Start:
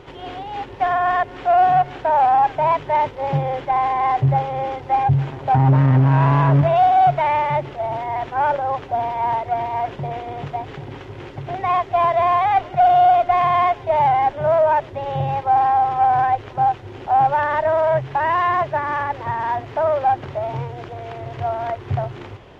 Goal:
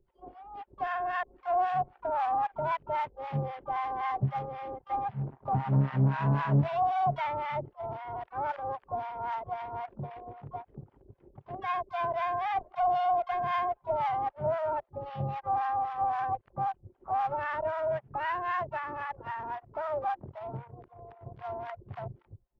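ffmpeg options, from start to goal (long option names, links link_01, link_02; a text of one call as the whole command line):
ffmpeg -i in.wav -filter_complex "[0:a]anlmdn=158,acrossover=split=820[link_01][link_02];[link_01]aeval=exprs='val(0)*(1-1/2+1/2*cos(2*PI*3.8*n/s))':channel_layout=same[link_03];[link_02]aeval=exprs='val(0)*(1-1/2-1/2*cos(2*PI*3.8*n/s))':channel_layout=same[link_04];[link_03][link_04]amix=inputs=2:normalize=0,asplit=2[link_05][link_06];[link_06]asetrate=66075,aresample=44100,atempo=0.66742,volume=-14dB[link_07];[link_05][link_07]amix=inputs=2:normalize=0,volume=-8dB" out.wav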